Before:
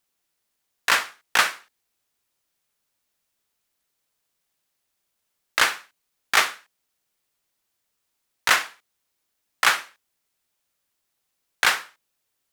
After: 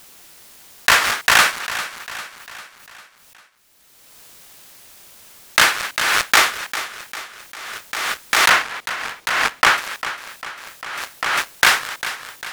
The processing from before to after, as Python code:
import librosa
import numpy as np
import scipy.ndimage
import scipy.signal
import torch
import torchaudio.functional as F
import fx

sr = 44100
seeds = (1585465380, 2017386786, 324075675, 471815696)

y = fx.high_shelf(x, sr, hz=5200.0, db=-12.0, at=(8.49, 9.78))
y = fx.leveller(y, sr, passes=3)
y = fx.echo_feedback(y, sr, ms=399, feedback_pct=51, wet_db=-12.5)
y = fx.pre_swell(y, sr, db_per_s=24.0)
y = F.gain(torch.from_numpy(y), -2.5).numpy()